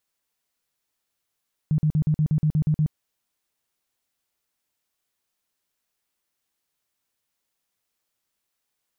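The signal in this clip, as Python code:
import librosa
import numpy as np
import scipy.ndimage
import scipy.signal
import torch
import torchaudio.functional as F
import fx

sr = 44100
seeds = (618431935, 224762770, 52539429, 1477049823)

y = fx.tone_burst(sr, hz=153.0, cycles=11, every_s=0.12, bursts=10, level_db=-17.0)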